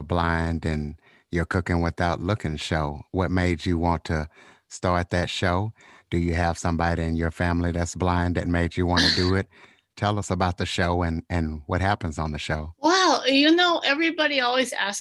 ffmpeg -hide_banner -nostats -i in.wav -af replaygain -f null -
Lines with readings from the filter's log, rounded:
track_gain = +2.4 dB
track_peak = 0.321